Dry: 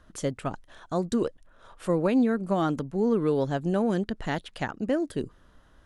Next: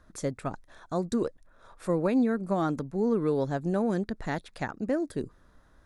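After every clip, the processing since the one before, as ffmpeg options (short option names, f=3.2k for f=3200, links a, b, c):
-af "equalizer=f=3k:w=7.3:g=-14,volume=-2dB"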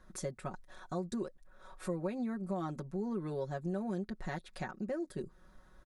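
-af "aecho=1:1:5.4:0.81,acompressor=threshold=-38dB:ratio=2,volume=-3dB"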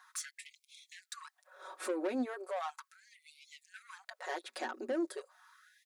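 -filter_complex "[0:a]acrossover=split=340[a][b];[a]flanger=delay=19:depth=2.2:speed=0.51[c];[b]asoftclip=type=tanh:threshold=-40dB[d];[c][d]amix=inputs=2:normalize=0,afftfilt=real='re*gte(b*sr/1024,220*pow(2100/220,0.5+0.5*sin(2*PI*0.37*pts/sr)))':imag='im*gte(b*sr/1024,220*pow(2100/220,0.5+0.5*sin(2*PI*0.37*pts/sr)))':win_size=1024:overlap=0.75,volume=7.5dB"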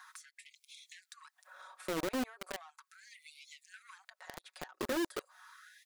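-filter_complex "[0:a]alimiter=level_in=12.5dB:limit=-24dB:level=0:latency=1:release=306,volume=-12.5dB,acrossover=split=660[a][b];[a]acrusher=bits=6:mix=0:aa=0.000001[c];[b]acompressor=threshold=-58dB:ratio=12[d];[c][d]amix=inputs=2:normalize=0,volume=7dB"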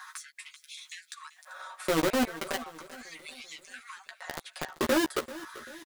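-filter_complex "[0:a]asplit=2[a][b];[b]adelay=13,volume=-5dB[c];[a][c]amix=inputs=2:normalize=0,aecho=1:1:389|778|1167|1556:0.141|0.0692|0.0339|0.0166,volume=8.5dB"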